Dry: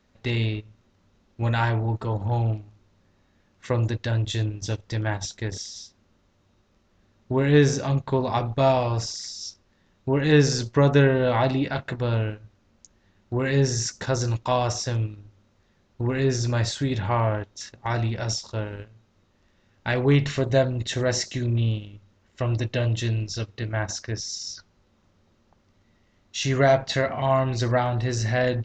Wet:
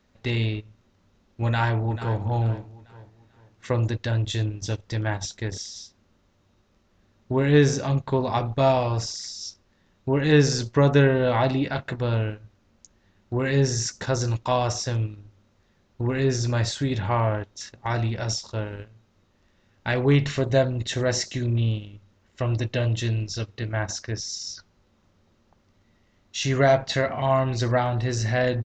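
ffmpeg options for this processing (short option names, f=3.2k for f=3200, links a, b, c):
-filter_complex "[0:a]asplit=2[a][b];[b]afade=t=in:st=1.46:d=0.01,afade=t=out:st=2.21:d=0.01,aecho=0:1:440|880|1320|1760:0.237137|0.0829981|0.0290493|0.0101673[c];[a][c]amix=inputs=2:normalize=0"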